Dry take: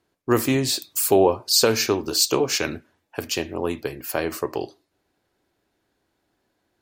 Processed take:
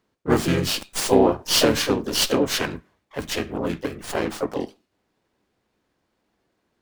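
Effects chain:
pitch-shifted copies added −7 semitones −1 dB, +3 semitones −8 dB, +4 semitones −6 dB
windowed peak hold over 3 samples
level −3 dB

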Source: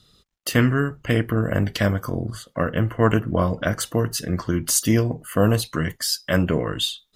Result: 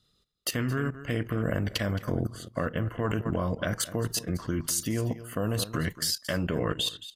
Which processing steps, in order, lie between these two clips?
single-tap delay 219 ms −15.5 dB
output level in coarse steps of 14 dB

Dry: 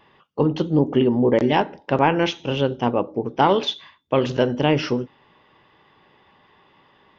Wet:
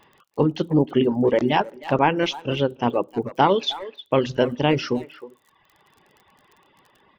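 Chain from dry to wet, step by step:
surface crackle 39 per second −39 dBFS
far-end echo of a speakerphone 310 ms, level −11 dB
reverb reduction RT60 1 s

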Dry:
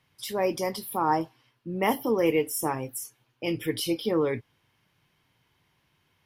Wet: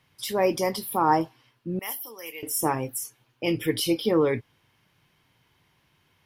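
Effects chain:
0:01.79–0:02.43: first difference
level +3.5 dB

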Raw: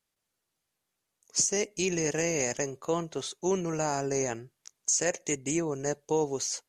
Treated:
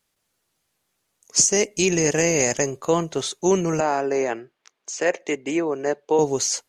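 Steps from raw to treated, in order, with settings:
0:03.80–0:06.19: three-way crossover with the lows and the highs turned down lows −19 dB, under 250 Hz, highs −21 dB, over 3,800 Hz
level +9 dB

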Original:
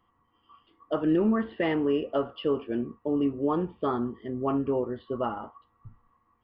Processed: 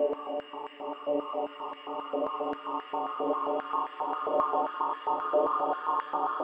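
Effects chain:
extreme stretch with random phases 14×, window 1.00 s, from 0:03.08
high-pass on a step sequencer 7.5 Hz 600–1,800 Hz

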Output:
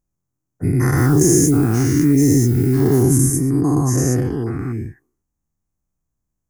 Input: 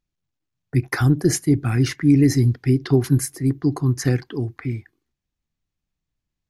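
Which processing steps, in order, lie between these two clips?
every bin's largest magnitude spread in time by 240 ms
drawn EQ curve 1,100 Hz 0 dB, 3,900 Hz −21 dB, 6,400 Hz +2 dB
0:00.96–0:03.02: background noise violet −35 dBFS
level −2 dB

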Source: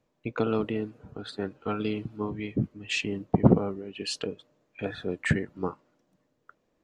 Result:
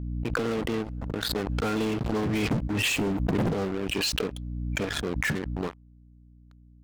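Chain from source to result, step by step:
source passing by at 0:02.79, 8 m/s, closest 3.6 metres
leveller curve on the samples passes 2
gain on a spectral selection 0:02.88–0:03.35, 1,200–6,400 Hz −9 dB
downward compressor 6 to 1, threshold −35 dBFS, peak gain reduction 20 dB
leveller curve on the samples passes 5
mains hum 60 Hz, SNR 23 dB
background raised ahead of every attack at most 21 dB per second

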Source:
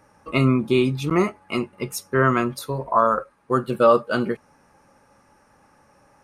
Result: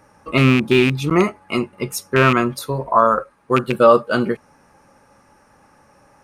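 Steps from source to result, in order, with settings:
loose part that buzzes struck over −20 dBFS, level −13 dBFS
level +4 dB

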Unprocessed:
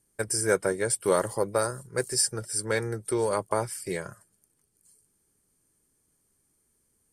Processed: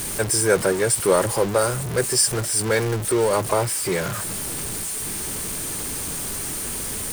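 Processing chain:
converter with a step at zero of −26.5 dBFS
level +4 dB

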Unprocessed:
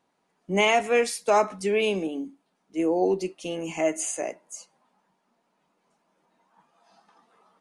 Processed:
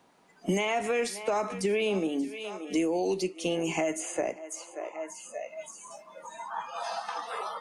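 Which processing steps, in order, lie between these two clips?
feedback echo with a high-pass in the loop 578 ms, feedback 30%, high-pass 290 Hz, level −23.5 dB
brickwall limiter −19.5 dBFS, peak gain reduction 9 dB
noise reduction from a noise print of the clip's start 20 dB
multiband upward and downward compressor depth 100%

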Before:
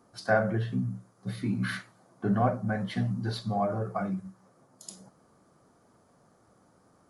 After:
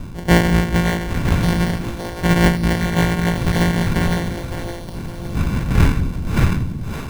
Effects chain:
samples sorted by size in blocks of 256 samples
wind on the microphone 170 Hz −35 dBFS
in parallel at −0.5 dB: downward compressor, threshold −40 dBFS, peak gain reduction 19 dB
on the sum: decimation without filtering 35×
low-shelf EQ 320 Hz +5.5 dB
echo with a time of its own for lows and highs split 340 Hz, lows 189 ms, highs 563 ms, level −7 dB
dynamic equaliser 1,900 Hz, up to +8 dB, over −47 dBFS, Q 1.2
every ending faded ahead of time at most 170 dB per second
level +6 dB

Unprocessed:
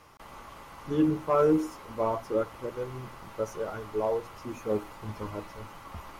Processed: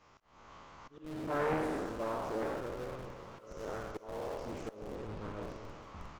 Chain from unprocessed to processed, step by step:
peak hold with a decay on every bin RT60 1.78 s
downsampling to 16,000 Hz
volume swells 350 ms
in parallel at −10 dB: comparator with hysteresis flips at −29 dBFS
0:04.95–0:05.43: on the sum: high-frequency loss of the air 84 metres
feedback echo with a high-pass in the loop 392 ms, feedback 65%, high-pass 420 Hz, level −15 dB
harmonic and percussive parts rebalanced harmonic −7 dB
highs frequency-modulated by the lows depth 0.76 ms
level −7 dB

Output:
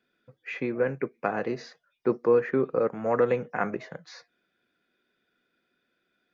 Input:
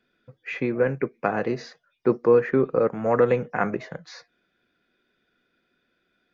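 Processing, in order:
low-shelf EQ 87 Hz −10 dB
level −3.5 dB

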